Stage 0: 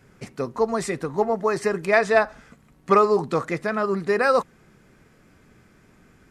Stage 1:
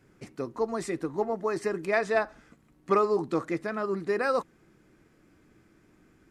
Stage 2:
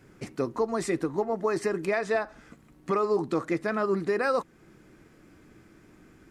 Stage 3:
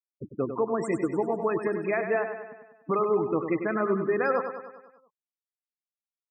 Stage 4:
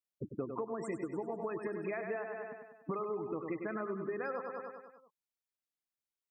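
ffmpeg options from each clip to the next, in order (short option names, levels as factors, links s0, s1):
-af "equalizer=f=320:w=4.3:g=10.5,volume=0.398"
-af "alimiter=limit=0.075:level=0:latency=1:release=345,volume=2"
-af "afftfilt=real='re*gte(hypot(re,im),0.0355)':imag='im*gte(hypot(re,im),0.0355)':win_size=1024:overlap=0.75,aecho=1:1:98|196|294|392|490|588|686:0.398|0.223|0.125|0.0699|0.0392|0.0219|0.0123"
-af "acompressor=threshold=0.0224:ratio=10,volume=0.841"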